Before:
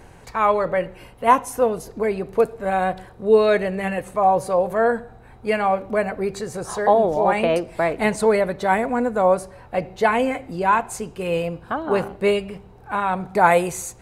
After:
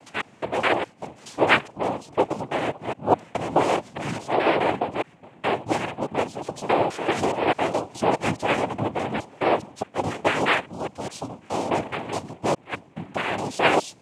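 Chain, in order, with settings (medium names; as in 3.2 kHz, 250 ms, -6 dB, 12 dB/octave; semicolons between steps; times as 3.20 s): slices played last to first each 209 ms, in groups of 2; noise-vocoded speech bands 4; trim -4 dB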